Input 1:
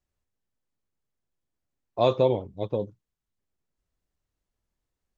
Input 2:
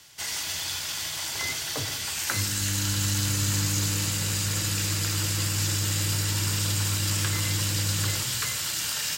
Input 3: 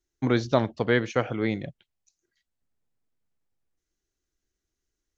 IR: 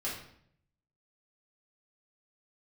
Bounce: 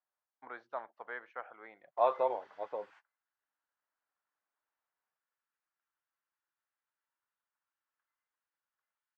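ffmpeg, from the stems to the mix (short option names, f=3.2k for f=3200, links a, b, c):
-filter_complex "[0:a]volume=0dB,asplit=2[a][b];[1:a]adelay=750,volume=-19.5dB[c];[2:a]adelay=200,volume=-12dB[d];[b]apad=whole_len=437673[e];[c][e]sidechaingate=range=-34dB:threshold=-47dB:ratio=16:detection=peak[f];[a][f][d]amix=inputs=3:normalize=0,asuperpass=centerf=1100:order=4:qfactor=1.1"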